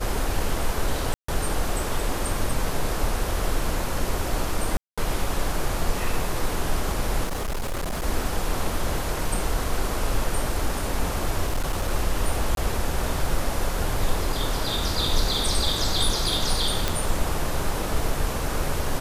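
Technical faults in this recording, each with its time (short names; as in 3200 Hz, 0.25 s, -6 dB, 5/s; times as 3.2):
1.14–1.28 gap 0.144 s
4.77–4.98 gap 0.206 s
7.24–8.05 clipped -24 dBFS
11.45–11.9 clipped -19.5 dBFS
12.55–12.57 gap 22 ms
16.88 pop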